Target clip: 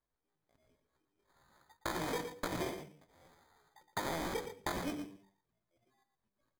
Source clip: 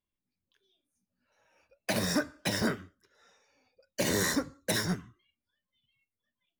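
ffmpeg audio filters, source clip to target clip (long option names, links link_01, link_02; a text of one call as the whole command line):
ffmpeg -i in.wav -af "acrusher=samples=26:mix=1:aa=0.000001,bandreject=frequency=60:width_type=h:width=6,bandreject=frequency=120:width_type=h:width=6,bandreject=frequency=180:width_type=h:width=6,bandreject=frequency=240:width_type=h:width=6,bandreject=frequency=300:width_type=h:width=6,asetrate=72056,aresample=44100,atempo=0.612027,acompressor=threshold=-36dB:ratio=6,aecho=1:1:117:0.335,volume=1dB" out.wav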